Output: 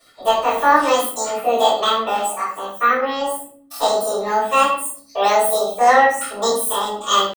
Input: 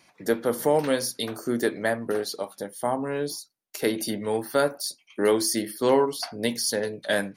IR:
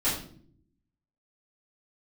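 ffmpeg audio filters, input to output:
-filter_complex "[0:a]aecho=1:1:3:0.43,asetrate=85689,aresample=44100,atempo=0.514651[link_01];[1:a]atrim=start_sample=2205[link_02];[link_01][link_02]afir=irnorm=-1:irlink=0,volume=-2.5dB"

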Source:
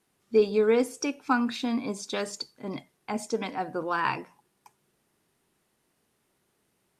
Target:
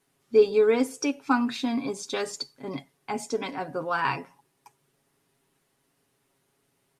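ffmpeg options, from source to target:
ffmpeg -i in.wav -af "aecho=1:1:7.3:0.6" out.wav

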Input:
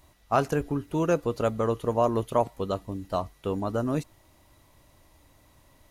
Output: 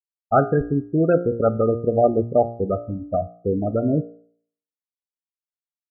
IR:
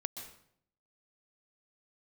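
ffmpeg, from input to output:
-af "asuperstop=centerf=1000:order=12:qfactor=2.7,afftfilt=real='re*gte(hypot(re,im),0.1)':imag='im*gte(hypot(re,im),0.1)':win_size=1024:overlap=0.75,bandreject=frequency=58.34:width_type=h:width=4,bandreject=frequency=116.68:width_type=h:width=4,bandreject=frequency=175.02:width_type=h:width=4,bandreject=frequency=233.36:width_type=h:width=4,bandreject=frequency=291.7:width_type=h:width=4,bandreject=frequency=350.04:width_type=h:width=4,bandreject=frequency=408.38:width_type=h:width=4,bandreject=frequency=466.72:width_type=h:width=4,bandreject=frequency=525.06:width_type=h:width=4,bandreject=frequency=583.4:width_type=h:width=4,bandreject=frequency=641.74:width_type=h:width=4,bandreject=frequency=700.08:width_type=h:width=4,bandreject=frequency=758.42:width_type=h:width=4,bandreject=frequency=816.76:width_type=h:width=4,bandreject=frequency=875.1:width_type=h:width=4,bandreject=frequency=933.44:width_type=h:width=4,bandreject=frequency=991.78:width_type=h:width=4,bandreject=frequency=1050.12:width_type=h:width=4,bandreject=frequency=1108.46:width_type=h:width=4,bandreject=frequency=1166.8:width_type=h:width=4,bandreject=frequency=1225.14:width_type=h:width=4,bandreject=frequency=1283.48:width_type=h:width=4,bandreject=frequency=1341.82:width_type=h:width=4,bandreject=frequency=1400.16:width_type=h:width=4,bandreject=frequency=1458.5:width_type=h:width=4,bandreject=frequency=1516.84:width_type=h:width=4,bandreject=frequency=1575.18:width_type=h:width=4,bandreject=frequency=1633.52:width_type=h:width=4,bandreject=frequency=1691.86:width_type=h:width=4,bandreject=frequency=1750.2:width_type=h:width=4,volume=8dB"

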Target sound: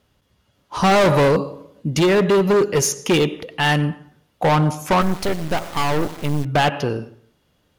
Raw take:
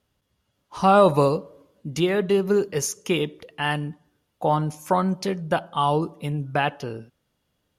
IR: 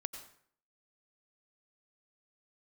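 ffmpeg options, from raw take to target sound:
-filter_complex "[0:a]asplit=2[link_01][link_02];[1:a]atrim=start_sample=2205,lowpass=7200[link_03];[link_02][link_03]afir=irnorm=-1:irlink=0,volume=-5.5dB[link_04];[link_01][link_04]amix=inputs=2:normalize=0,volume=19dB,asoftclip=hard,volume=-19dB,asettb=1/sr,asplit=3[link_05][link_06][link_07];[link_05]atrim=end=5.014[link_08];[link_06]atrim=start=5.01:end=6.45,asetpts=PTS-STARTPTS,afade=type=in:duration=0.004:curve=qsin,afade=type=out:start_time=1.436:duration=0.004:curve=qsin,acrusher=bits=4:dc=4:mix=0:aa=0.000001[link_09];[link_07]atrim=start=6.446[link_10];[link_08][link_09]acrossfade=duration=0.004:curve1=hsin:curve2=qsin[link_11];[link_11][link_10]acrossfade=duration=0.004:curve1=qsin:curve2=hsin,volume=6.5dB"

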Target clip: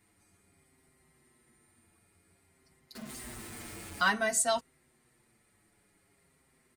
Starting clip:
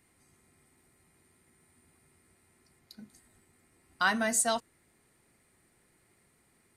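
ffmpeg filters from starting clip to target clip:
ffmpeg -i in.wav -filter_complex "[0:a]asettb=1/sr,asplit=3[link_01][link_02][link_03];[link_01]atrim=end=2.954[link_04];[link_02]atrim=start=2.95:end=4.09,asetpts=PTS-STARTPTS,afade=type=in:duration=0.004:curve=qsin,afade=type=out:start_time=1.136:duration=0.004:curve=qsin,aeval=exprs='val(0)+0.5*0.0119*sgn(val(0))':channel_layout=same[link_05];[link_03]atrim=start=4.086[link_06];[link_04][link_05]acrossfade=duration=0.004:curve1=hsin:curve2=qsin[link_07];[link_07][link_06]acrossfade=duration=0.004:curve1=qsin:curve2=hsin,highshelf=frequency=12000:gain=-3,asplit=2[link_08][link_09];[link_09]adelay=6.5,afreqshift=-0.54[link_10];[link_08][link_10]amix=inputs=2:normalize=1,volume=2.5dB" out.wav

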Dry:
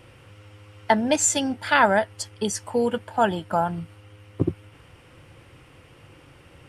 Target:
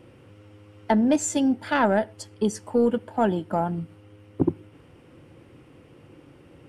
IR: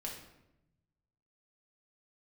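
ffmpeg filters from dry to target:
-filter_complex "[0:a]equalizer=frequency=280:width=0.56:gain=13.5,asoftclip=type=tanh:threshold=-1dB,asplit=2[link_01][link_02];[1:a]atrim=start_sample=2205,afade=type=out:start_time=0.18:duration=0.01,atrim=end_sample=8379[link_03];[link_02][link_03]afir=irnorm=-1:irlink=0,volume=-19dB[link_04];[link_01][link_04]amix=inputs=2:normalize=0,volume=-8.5dB"

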